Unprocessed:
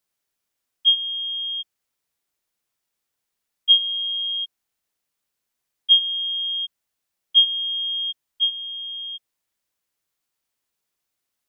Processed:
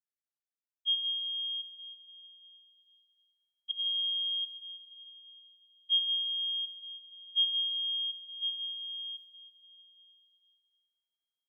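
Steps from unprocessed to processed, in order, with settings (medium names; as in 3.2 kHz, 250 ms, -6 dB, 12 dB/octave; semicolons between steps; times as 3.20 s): gate with hold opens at -29 dBFS; slow attack 107 ms; 3.71–5.92 s: compressor with a negative ratio -26 dBFS, ratio -0.5; plate-style reverb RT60 3.2 s, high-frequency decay 0.85×, pre-delay 120 ms, DRR 8.5 dB; trim -6.5 dB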